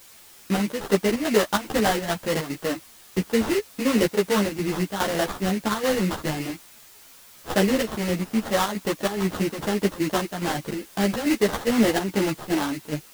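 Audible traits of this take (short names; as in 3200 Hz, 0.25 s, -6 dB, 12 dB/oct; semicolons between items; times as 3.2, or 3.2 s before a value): aliases and images of a low sample rate 2400 Hz, jitter 20%; chopped level 2.4 Hz, depth 60%, duty 75%; a quantiser's noise floor 8-bit, dither triangular; a shimmering, thickened sound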